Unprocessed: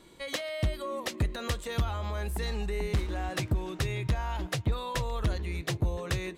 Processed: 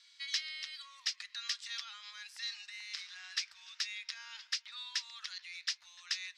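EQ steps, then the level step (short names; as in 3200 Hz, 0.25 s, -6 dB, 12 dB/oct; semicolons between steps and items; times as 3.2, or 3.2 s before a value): inverse Chebyshev high-pass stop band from 470 Hz, stop band 60 dB; synth low-pass 5200 Hz, resonance Q 5.2; -4.5 dB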